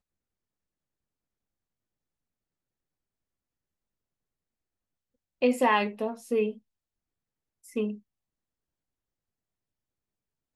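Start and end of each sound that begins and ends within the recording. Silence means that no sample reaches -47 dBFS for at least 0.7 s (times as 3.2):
5.42–6.58
7.64–7.99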